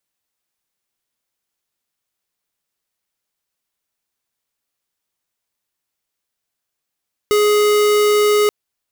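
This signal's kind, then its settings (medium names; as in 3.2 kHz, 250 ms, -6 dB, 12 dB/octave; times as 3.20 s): tone square 418 Hz -13.5 dBFS 1.18 s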